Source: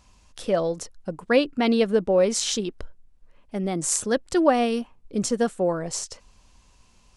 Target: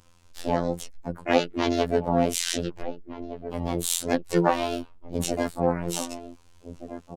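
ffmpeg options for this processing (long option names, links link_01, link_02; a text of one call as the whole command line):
ffmpeg -i in.wav -filter_complex "[0:a]asplit=2[link_01][link_02];[link_02]adelay=1516,volume=-12dB,highshelf=frequency=4000:gain=-34.1[link_03];[link_01][link_03]amix=inputs=2:normalize=0,asplit=4[link_04][link_05][link_06][link_07];[link_05]asetrate=22050,aresample=44100,atempo=2,volume=-4dB[link_08];[link_06]asetrate=55563,aresample=44100,atempo=0.793701,volume=-5dB[link_09];[link_07]asetrate=66075,aresample=44100,atempo=0.66742,volume=-6dB[link_10];[link_04][link_08][link_09][link_10]amix=inputs=4:normalize=0,afftfilt=real='hypot(re,im)*cos(PI*b)':imag='0':win_size=2048:overlap=0.75,volume=-1.5dB" out.wav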